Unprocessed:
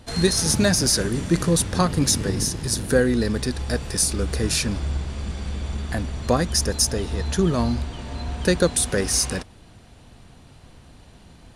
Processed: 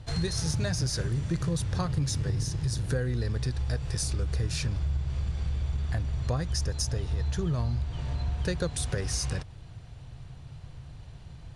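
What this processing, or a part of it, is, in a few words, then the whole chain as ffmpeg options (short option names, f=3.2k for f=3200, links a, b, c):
jukebox: -af "lowpass=7.7k,lowshelf=f=170:t=q:w=3:g=7,acompressor=threshold=-23dB:ratio=3,volume=-4.5dB"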